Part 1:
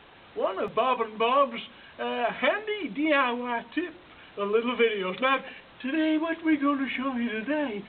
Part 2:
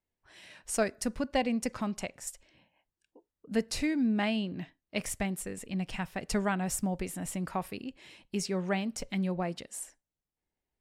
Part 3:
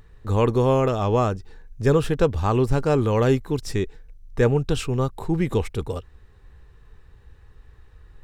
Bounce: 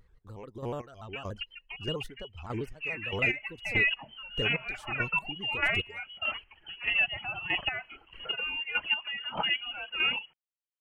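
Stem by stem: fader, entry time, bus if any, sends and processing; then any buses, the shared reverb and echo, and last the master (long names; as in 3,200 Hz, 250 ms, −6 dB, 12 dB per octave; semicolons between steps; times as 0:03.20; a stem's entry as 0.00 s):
−2.0 dB, 2.45 s, bus A, no send, no processing
−10.5 dB, 0.35 s, bus A, no send, pitch modulation by a square or saw wave square 6.7 Hz, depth 250 cents
−12.0 dB, 0.00 s, no bus, no send, downward compressor 6 to 1, threshold −22 dBFS, peak gain reduction 9.5 dB; pitch modulation by a square or saw wave square 6.9 Hz, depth 160 cents
bus A: 0.0 dB, voice inversion scrambler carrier 3,100 Hz; brickwall limiter −21 dBFS, peak gain reduction 8 dB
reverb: not used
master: square-wave tremolo 1.6 Hz, depth 60%, duty 30%; automatic gain control gain up to 4 dB; reverb reduction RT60 1.2 s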